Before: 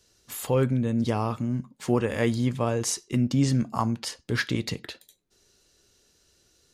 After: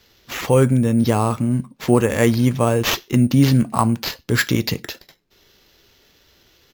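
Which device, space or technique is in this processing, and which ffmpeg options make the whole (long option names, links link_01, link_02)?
crushed at another speed: -af "asetrate=35280,aresample=44100,acrusher=samples=6:mix=1:aa=0.000001,asetrate=55125,aresample=44100,volume=8.5dB"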